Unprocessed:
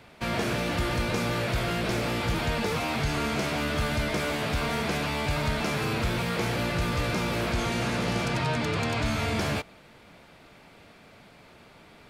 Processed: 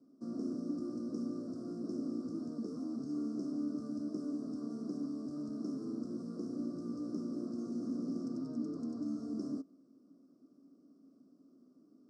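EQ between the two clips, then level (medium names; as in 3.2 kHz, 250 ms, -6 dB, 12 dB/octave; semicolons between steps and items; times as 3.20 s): vowel filter i; Chebyshev band-stop 1.2–5.3 kHz, order 4; cabinet simulation 210–8900 Hz, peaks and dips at 470 Hz -4 dB, 2.2 kHz -8 dB, 6.8 kHz -6 dB; +6.0 dB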